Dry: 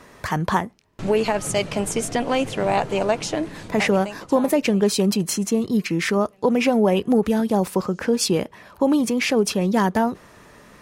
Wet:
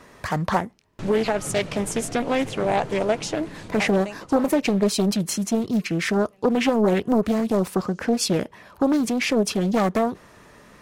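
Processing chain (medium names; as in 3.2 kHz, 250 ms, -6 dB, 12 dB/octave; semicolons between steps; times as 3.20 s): loudspeaker Doppler distortion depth 0.51 ms; trim -1.5 dB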